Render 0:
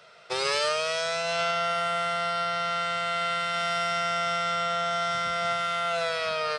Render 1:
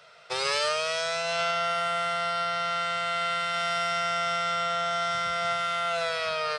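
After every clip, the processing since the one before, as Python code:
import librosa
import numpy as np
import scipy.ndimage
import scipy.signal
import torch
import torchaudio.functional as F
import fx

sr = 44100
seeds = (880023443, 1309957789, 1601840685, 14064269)

y = fx.peak_eq(x, sr, hz=280.0, db=-12.0, octaves=0.7)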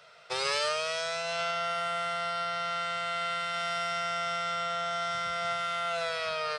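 y = fx.rider(x, sr, range_db=4, speed_s=2.0)
y = F.gain(torch.from_numpy(y), -4.0).numpy()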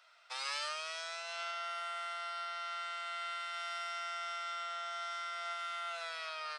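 y = scipy.signal.sosfilt(scipy.signal.butter(4, 770.0, 'highpass', fs=sr, output='sos'), x)
y = F.gain(torch.from_numpy(y), -8.0).numpy()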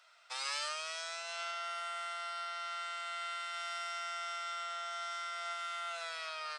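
y = fx.peak_eq(x, sr, hz=7600.0, db=5.5, octaves=0.71)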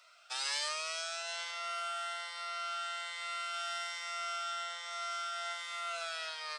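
y = fx.notch_cascade(x, sr, direction='rising', hz=1.2)
y = F.gain(torch.from_numpy(y), 4.0).numpy()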